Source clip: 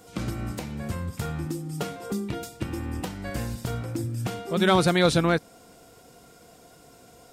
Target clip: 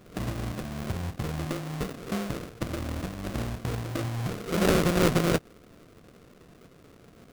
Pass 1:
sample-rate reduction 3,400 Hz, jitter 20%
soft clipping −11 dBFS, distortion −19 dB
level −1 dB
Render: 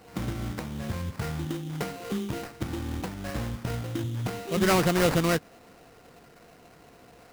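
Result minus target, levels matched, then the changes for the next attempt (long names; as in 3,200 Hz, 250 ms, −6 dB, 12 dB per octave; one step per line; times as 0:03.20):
sample-rate reduction: distortion −10 dB
change: sample-rate reduction 890 Hz, jitter 20%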